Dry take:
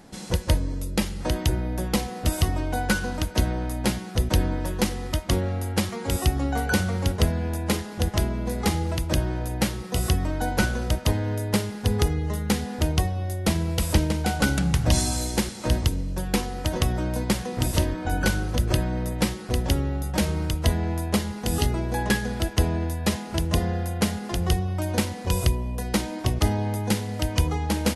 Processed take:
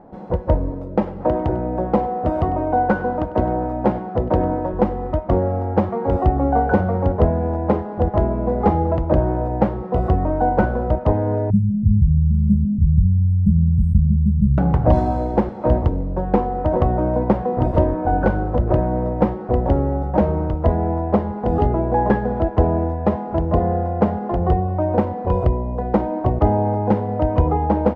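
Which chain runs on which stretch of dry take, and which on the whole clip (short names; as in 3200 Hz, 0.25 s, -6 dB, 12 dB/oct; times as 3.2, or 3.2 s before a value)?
0.7–4.74 HPF 120 Hz 6 dB/oct + echo 99 ms -17.5 dB
11.5–14.58 brick-wall FIR band-stop 220–7800 Hz + de-hum 297.3 Hz, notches 5 + fast leveller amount 50%
whole clip: bell 690 Hz +8 dB 1.9 oct; AGC gain up to 5.5 dB; Chebyshev low-pass 840 Hz, order 2; gain +1.5 dB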